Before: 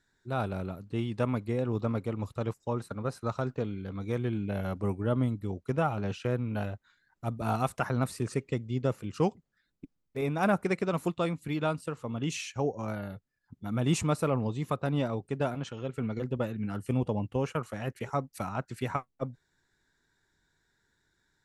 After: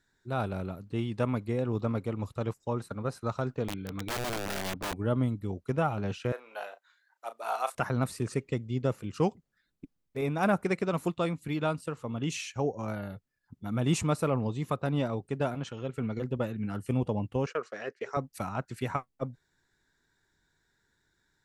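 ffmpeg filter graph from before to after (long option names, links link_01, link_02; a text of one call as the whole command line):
ffmpeg -i in.wav -filter_complex "[0:a]asettb=1/sr,asplit=3[link_01][link_02][link_03];[link_01]atrim=end=3.684[link_04];[link_02]atrim=start=3.68:end=4.96,asetpts=PTS-STARTPTS,afade=type=in:duration=0.004:curve=qsin,afade=type=out:start_time=1.276:duration=0.004:curve=qsin,lowpass=frequency=4500:width=0.5412,lowpass=frequency=4500:width=1.3066,aecho=1:1:6.7:0.39,atrim=end_sample=56448,aeval=exprs='(mod(25.1*val(0)+1,2)-1)/25.1':channel_layout=same[link_05];[link_03]atrim=start=4.956[link_06];[link_04][link_05]acrossfade=duration=0.004:curve1=hsin:curve2=qsin[link_07];[link_07][link_06]acrossfade=duration=0.004:curve1=qsin:curve2=hsin,asettb=1/sr,asplit=3[link_08][link_09][link_10];[link_08]atrim=end=6.324[link_11];[link_09]atrim=start=6.32:end=7.75,asetpts=PTS-STARTPTS,afade=type=in:duration=0.004:curve=qsin,afade=type=out:start_time=1.426:duration=0.004:curve=qsin,highpass=frequency=550:width=0.5412,highpass=frequency=550:width=1.3066,asplit=2[link_12][link_13];[link_13]adelay=35,volume=-11dB[link_14];[link_12][link_14]amix=inputs=2:normalize=0,atrim=end_sample=63063[link_15];[link_10]atrim=start=7.746[link_16];[link_11][link_15]acrossfade=duration=0.004:curve1=hsin:curve2=qsin[link_17];[link_17][link_16]acrossfade=duration=0.004:curve1=qsin:curve2=hsin,asettb=1/sr,asplit=3[link_18][link_19][link_20];[link_18]atrim=end=17.464[link_21];[link_19]atrim=start=17.46:end=18.17,asetpts=PTS-STARTPTS,afade=type=in:duration=0.004:curve=qsin,afade=type=out:start_time=0.706:duration=0.004:curve=qsin,agate=range=-14dB:threshold=-50dB:ratio=16:release=100:detection=peak,highpass=420,equalizer=frequency=430:width_type=q:width=4:gain=9,equalizer=frequency=870:width_type=q:width=4:gain=-9,equalizer=frequency=1700:width_type=q:width=4:gain=4,equalizer=frequency=3000:width_type=q:width=4:gain=-3,equalizer=frequency=5000:width_type=q:width=4:gain=6,lowpass=frequency=6500:width=0.5412,lowpass=frequency=6500:width=1.3066[link_22];[link_20]atrim=start=18.166[link_23];[link_21][link_22]acrossfade=duration=0.004:curve1=hsin:curve2=qsin[link_24];[link_24][link_23]acrossfade=duration=0.004:curve1=qsin:curve2=hsin" out.wav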